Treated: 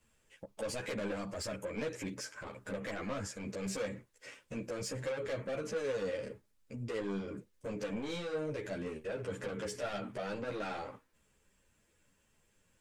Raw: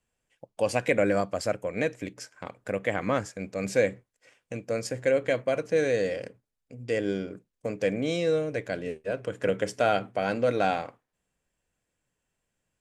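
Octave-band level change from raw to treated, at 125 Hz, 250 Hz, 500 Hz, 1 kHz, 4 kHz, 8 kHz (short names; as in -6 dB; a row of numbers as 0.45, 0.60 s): -8.0, -8.5, -12.0, -13.0, -6.5, -4.0 dB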